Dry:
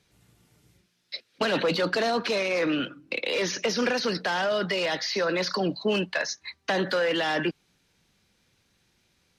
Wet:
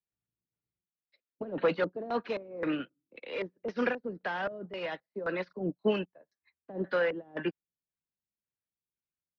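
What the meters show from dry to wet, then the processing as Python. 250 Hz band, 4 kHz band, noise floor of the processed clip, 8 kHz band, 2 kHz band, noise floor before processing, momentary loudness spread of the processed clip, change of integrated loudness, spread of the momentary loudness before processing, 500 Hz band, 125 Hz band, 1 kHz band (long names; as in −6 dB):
−6.0 dB, −17.5 dB, below −85 dBFS, below −30 dB, −9.5 dB, −70 dBFS, 10 LU, −7.5 dB, 7 LU, −6.0 dB, −7.5 dB, −8.0 dB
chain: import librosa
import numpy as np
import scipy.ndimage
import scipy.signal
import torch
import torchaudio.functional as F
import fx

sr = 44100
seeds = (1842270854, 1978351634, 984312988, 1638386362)

y = fx.filter_lfo_lowpass(x, sr, shape='square', hz=1.9, low_hz=450.0, high_hz=2200.0, q=0.86)
y = fx.upward_expand(y, sr, threshold_db=-44.0, expansion=2.5)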